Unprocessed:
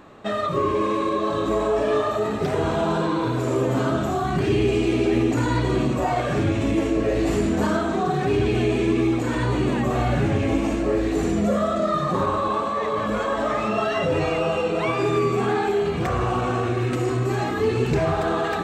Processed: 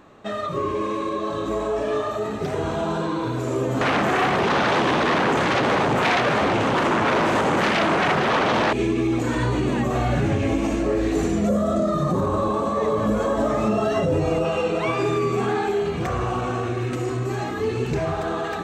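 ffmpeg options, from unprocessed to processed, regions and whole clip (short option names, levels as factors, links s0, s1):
-filter_complex "[0:a]asettb=1/sr,asplit=3[s0][s1][s2];[s0]atrim=end=3.814[s3];[s1]atrim=start=3.81:end=8.73,asetpts=PTS-STARTPTS,afade=t=in:d=0.004:c=qsin,afade=t=out:st=4.916:d=0.004:c=qsin,acrossover=split=2800[s4][s5];[s5]acompressor=threshold=0.00282:ratio=4:attack=1:release=60[s6];[s4][s6]amix=inputs=2:normalize=0,aeval=exprs='0.316*sin(PI/2*5.01*val(0)/0.316)':c=same,highpass=130[s7];[s2]atrim=start=8.726[s8];[s3][s7]acrossfade=d=0.004:c1=hsin:c2=qsin[s9];[s9][s8]acrossfade=d=0.004:c1=qsin:c2=hsin,asettb=1/sr,asplit=3[s10][s11][s12];[s10]atrim=end=11.494[s13];[s11]atrim=start=11.49:end=14.45,asetpts=PTS-STARTPTS,afade=t=in:d=0.004:c=qsin,afade=t=out:st=2.956:d=0.004:c=qsin,equalizer=f=2300:w=0.38:g=-12,acontrast=62[s14];[s12]atrim=start=14.446[s15];[s13][s14]acrossfade=d=0.004:c1=hsin:c2=qsin[s16];[s16][s15]acrossfade=d=0.004:c1=qsin:c2=hsin,equalizer=f=6200:w=5.9:g=4,dynaudnorm=f=430:g=21:m=3.76,alimiter=limit=0.316:level=0:latency=1:release=88,volume=0.708"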